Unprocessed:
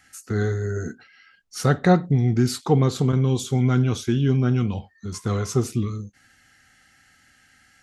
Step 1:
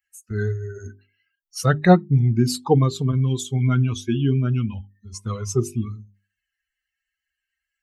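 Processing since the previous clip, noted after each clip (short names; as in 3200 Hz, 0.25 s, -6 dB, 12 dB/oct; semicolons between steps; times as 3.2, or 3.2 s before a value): per-bin expansion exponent 2; notches 50/100/150/200/250/300/350/400 Hz; gain +5 dB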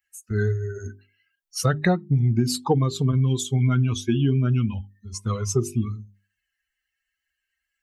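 compressor 10:1, threshold -18 dBFS, peak gain reduction 12 dB; gain +2 dB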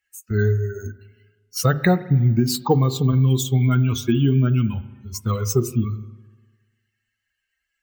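careless resampling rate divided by 2×, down filtered, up hold; spring tank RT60 1.3 s, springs 38/50 ms, chirp 60 ms, DRR 15 dB; gain +3 dB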